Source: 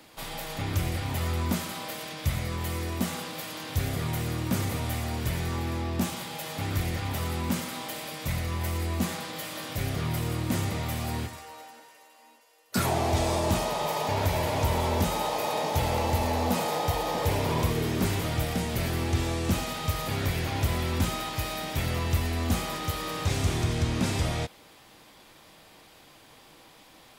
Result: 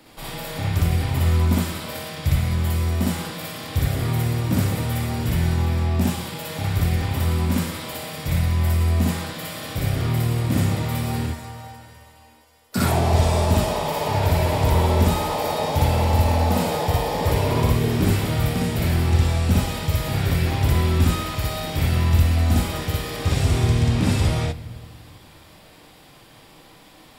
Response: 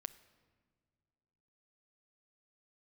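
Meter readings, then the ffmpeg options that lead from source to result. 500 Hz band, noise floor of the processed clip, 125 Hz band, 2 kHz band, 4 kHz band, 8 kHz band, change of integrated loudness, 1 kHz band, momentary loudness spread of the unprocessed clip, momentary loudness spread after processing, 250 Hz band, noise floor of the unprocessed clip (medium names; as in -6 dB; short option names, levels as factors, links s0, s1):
+5.0 dB, -49 dBFS, +9.5 dB, +4.0 dB, +4.0 dB, +3.0 dB, +7.5 dB, +4.0 dB, 8 LU, 10 LU, +7.0 dB, -54 dBFS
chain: -filter_complex "[0:a]lowshelf=f=270:g=6,bandreject=f=6300:w=11,asplit=2[s0][s1];[1:a]atrim=start_sample=2205,adelay=59[s2];[s1][s2]afir=irnorm=-1:irlink=0,volume=1.88[s3];[s0][s3]amix=inputs=2:normalize=0"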